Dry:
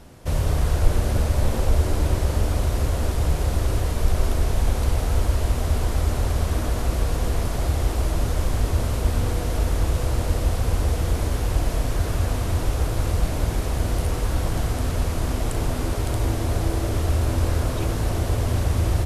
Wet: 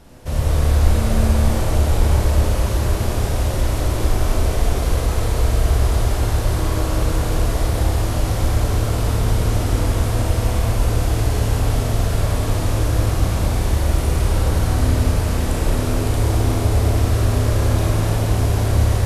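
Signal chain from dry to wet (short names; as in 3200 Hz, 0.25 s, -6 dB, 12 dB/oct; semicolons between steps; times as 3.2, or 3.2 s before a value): Schroeder reverb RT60 3.4 s, combs from 28 ms, DRR -4.5 dB; gain -1 dB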